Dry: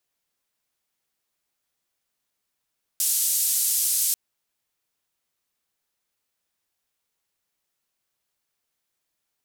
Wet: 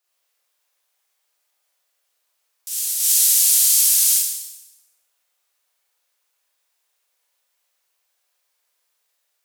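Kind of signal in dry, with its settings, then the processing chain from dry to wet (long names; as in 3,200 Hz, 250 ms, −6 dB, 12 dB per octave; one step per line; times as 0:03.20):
band-limited noise 7,000–13,000 Hz, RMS −23 dBFS 1.14 s
high-pass filter 470 Hz 24 dB per octave
on a send: backwards echo 330 ms −7.5 dB
on the sum: four-comb reverb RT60 0.93 s, combs from 31 ms, DRR −6.5 dB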